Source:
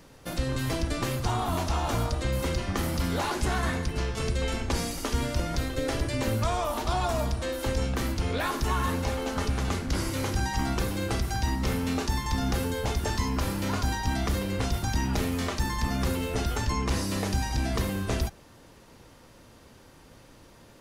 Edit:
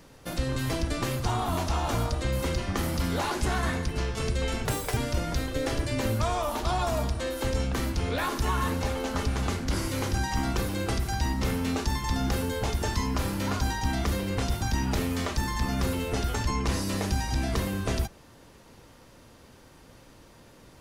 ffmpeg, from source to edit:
ffmpeg -i in.wav -filter_complex "[0:a]asplit=3[link_01][link_02][link_03];[link_01]atrim=end=4.654[link_04];[link_02]atrim=start=4.65:end=5.19,asetpts=PTS-STARTPTS,asetrate=74529,aresample=44100,atrim=end_sample=14091,asetpts=PTS-STARTPTS[link_05];[link_03]atrim=start=5.186[link_06];[link_04][link_05]acrossfade=duration=0.004:curve1=hsin:curve2=hsin[link_07];[link_07][link_06]acrossfade=duration=0.004:curve1=hsin:curve2=hsin" out.wav

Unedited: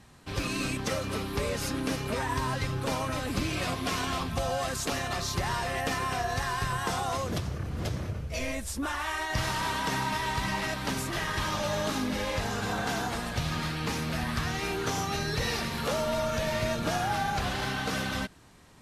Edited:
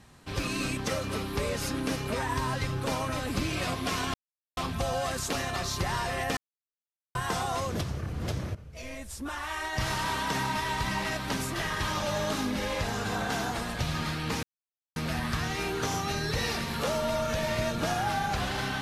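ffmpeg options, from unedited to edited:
ffmpeg -i in.wav -filter_complex "[0:a]asplit=6[link_01][link_02][link_03][link_04][link_05][link_06];[link_01]atrim=end=4.14,asetpts=PTS-STARTPTS,afade=type=out:start_time=4.136:duration=0.004:curve=hsin,apad=pad_dur=0.43[link_07];[link_02]atrim=start=4.14:end=5.94,asetpts=PTS-STARTPTS,afade=type=in:duration=0.004:curve=hsin,afade=type=out:start_time=1.796:duration=0.004:curve=hsin[link_08];[link_03]atrim=start=5.94:end=6.72,asetpts=PTS-STARTPTS,volume=0[link_09];[link_04]atrim=start=6.72:end=8.12,asetpts=PTS-STARTPTS,afade=type=in:duration=0.004:curve=hsin,afade=type=out:start_time=1.396:duration=0.004:curve=hsin:silence=0.223872[link_10];[link_05]atrim=start=8.12:end=14,asetpts=PTS-STARTPTS,afade=type=in:duration=1.38:silence=0.223872,afade=type=out:start_time=5.876:duration=0.004:curve=hsin,apad=pad_dur=0.53[link_11];[link_06]atrim=start=14,asetpts=PTS-STARTPTS,afade=type=in:duration=0.004:curve=hsin[link_12];[link_07][link_08][link_09][link_10][link_11][link_12]concat=n=6:v=0:a=1" out.wav

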